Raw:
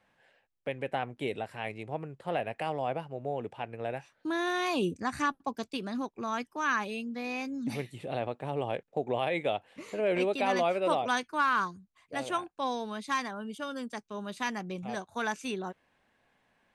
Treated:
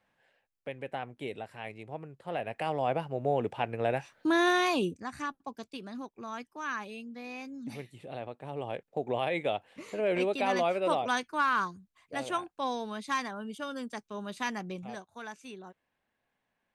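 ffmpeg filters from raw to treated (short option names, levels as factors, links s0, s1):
-af "volume=3.98,afade=t=in:st=2.27:d=1.06:silence=0.298538,afade=t=out:st=4.48:d=0.5:silence=0.237137,afade=t=in:st=8.4:d=0.74:silence=0.501187,afade=t=out:st=14.68:d=0.41:silence=0.316228"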